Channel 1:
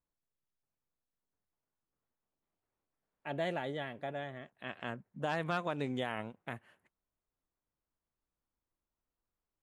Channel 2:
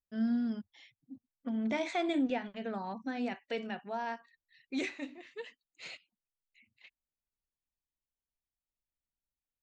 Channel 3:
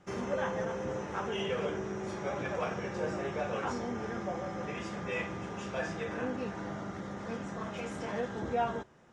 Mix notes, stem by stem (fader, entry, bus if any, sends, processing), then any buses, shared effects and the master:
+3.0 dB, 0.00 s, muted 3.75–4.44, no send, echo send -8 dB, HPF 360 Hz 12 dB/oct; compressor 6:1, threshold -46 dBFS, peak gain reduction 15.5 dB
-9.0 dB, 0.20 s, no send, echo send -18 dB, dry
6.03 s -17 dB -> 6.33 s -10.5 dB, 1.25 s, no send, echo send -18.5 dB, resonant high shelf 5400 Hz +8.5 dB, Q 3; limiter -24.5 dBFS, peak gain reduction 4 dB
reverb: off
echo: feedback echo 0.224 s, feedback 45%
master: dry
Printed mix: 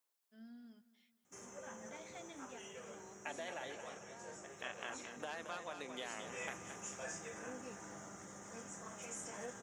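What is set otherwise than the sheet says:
stem 2 -9.0 dB -> -20.5 dB; stem 3: missing limiter -24.5 dBFS, peak gain reduction 4 dB; master: extra tilt +2 dB/oct

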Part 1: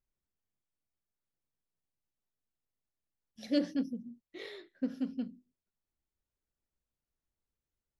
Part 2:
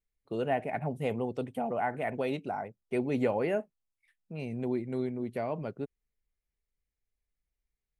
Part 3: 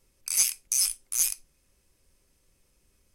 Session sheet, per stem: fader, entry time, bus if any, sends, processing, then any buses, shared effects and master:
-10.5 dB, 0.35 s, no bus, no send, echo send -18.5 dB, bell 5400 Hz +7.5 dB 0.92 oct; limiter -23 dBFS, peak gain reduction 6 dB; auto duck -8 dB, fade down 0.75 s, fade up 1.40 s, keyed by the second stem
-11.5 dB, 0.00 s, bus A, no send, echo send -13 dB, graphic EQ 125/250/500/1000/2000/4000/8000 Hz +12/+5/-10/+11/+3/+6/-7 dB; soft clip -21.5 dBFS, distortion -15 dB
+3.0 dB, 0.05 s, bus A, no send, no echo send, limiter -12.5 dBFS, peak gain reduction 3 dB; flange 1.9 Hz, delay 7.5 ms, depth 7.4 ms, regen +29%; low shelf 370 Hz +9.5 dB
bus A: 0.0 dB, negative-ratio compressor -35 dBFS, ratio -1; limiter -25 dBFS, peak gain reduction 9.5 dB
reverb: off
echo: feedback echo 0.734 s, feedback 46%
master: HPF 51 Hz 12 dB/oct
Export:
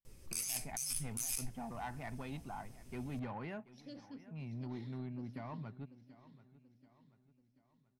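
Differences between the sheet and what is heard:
stem 2 -11.5 dB -> -19.5 dB; master: missing HPF 51 Hz 12 dB/oct

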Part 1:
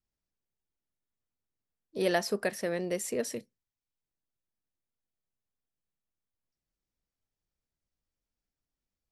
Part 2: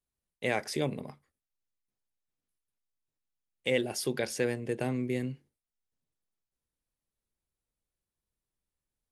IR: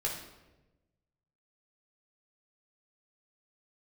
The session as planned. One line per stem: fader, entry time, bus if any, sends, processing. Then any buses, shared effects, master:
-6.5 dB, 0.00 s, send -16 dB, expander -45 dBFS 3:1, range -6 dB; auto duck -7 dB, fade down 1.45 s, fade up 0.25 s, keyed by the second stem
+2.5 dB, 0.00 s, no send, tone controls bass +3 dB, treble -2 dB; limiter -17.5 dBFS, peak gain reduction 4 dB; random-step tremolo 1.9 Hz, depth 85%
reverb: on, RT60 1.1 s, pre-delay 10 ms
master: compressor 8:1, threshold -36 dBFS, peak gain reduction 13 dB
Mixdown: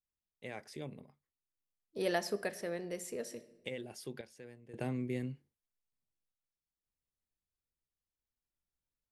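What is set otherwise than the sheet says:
stem 2 +2.5 dB -> -6.5 dB; master: missing compressor 8:1, threshold -36 dBFS, peak gain reduction 13 dB

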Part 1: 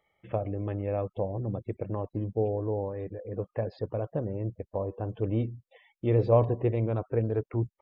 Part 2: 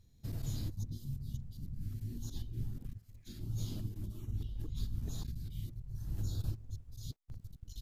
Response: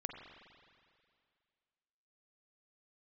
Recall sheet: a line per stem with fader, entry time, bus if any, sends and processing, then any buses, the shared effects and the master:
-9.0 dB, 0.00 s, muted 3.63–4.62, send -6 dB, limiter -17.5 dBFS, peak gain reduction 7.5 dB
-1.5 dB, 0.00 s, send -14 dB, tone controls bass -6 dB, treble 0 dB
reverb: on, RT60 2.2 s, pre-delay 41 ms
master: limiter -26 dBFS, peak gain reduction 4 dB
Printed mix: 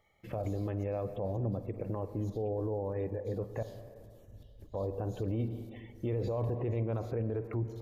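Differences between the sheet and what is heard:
stem 1 -9.0 dB -> -1.0 dB; stem 2 -1.5 dB -> -10.5 dB

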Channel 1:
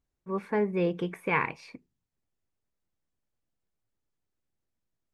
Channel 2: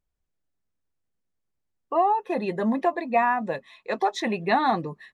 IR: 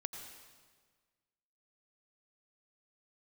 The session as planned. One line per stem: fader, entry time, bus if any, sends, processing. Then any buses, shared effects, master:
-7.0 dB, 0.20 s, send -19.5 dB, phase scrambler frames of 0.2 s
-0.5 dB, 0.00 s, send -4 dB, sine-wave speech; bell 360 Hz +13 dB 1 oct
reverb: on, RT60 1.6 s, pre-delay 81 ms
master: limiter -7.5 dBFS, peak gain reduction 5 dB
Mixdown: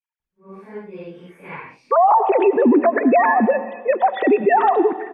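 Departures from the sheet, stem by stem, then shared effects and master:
stem 1: send off; stem 2 -0.5 dB -> +6.5 dB

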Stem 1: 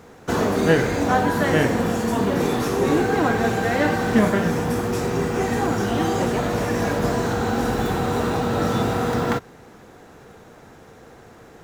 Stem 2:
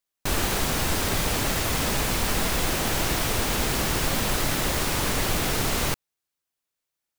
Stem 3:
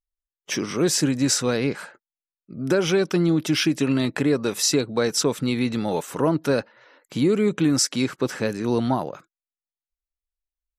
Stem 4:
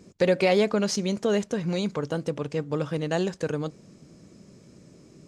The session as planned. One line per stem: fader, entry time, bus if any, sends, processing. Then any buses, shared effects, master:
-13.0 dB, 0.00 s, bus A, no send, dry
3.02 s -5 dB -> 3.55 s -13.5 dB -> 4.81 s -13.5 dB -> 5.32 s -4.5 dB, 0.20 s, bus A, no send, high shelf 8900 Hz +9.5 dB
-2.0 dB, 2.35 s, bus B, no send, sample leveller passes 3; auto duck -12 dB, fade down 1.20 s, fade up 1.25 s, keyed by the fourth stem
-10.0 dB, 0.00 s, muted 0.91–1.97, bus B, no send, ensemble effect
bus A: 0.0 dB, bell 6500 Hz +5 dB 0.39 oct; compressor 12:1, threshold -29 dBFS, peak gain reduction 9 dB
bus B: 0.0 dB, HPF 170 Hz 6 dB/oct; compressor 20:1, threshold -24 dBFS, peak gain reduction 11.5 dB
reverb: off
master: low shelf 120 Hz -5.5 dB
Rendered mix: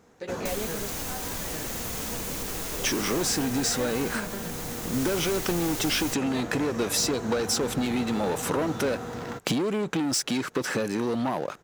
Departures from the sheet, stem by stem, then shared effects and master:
stem 3 -2.0 dB -> +7.5 dB; master: missing low shelf 120 Hz -5.5 dB

